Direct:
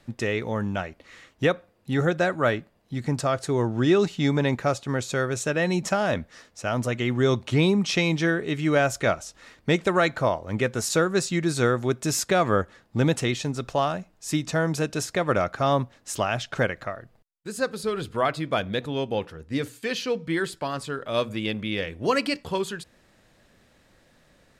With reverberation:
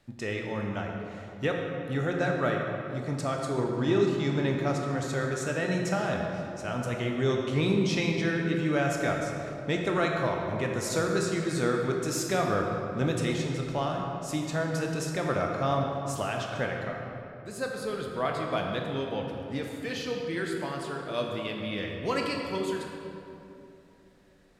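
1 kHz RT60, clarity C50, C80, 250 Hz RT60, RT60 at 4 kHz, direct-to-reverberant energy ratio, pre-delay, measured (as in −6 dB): 2.7 s, 2.0 dB, 3.0 dB, 3.5 s, 1.6 s, 0.5 dB, 16 ms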